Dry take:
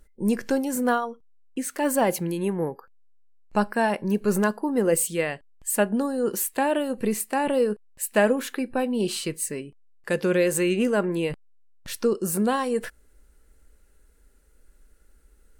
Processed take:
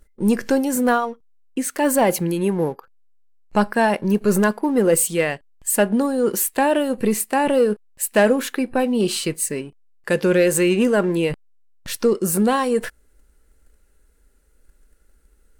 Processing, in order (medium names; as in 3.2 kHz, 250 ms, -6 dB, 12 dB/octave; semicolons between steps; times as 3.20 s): waveshaping leveller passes 1; trim +2 dB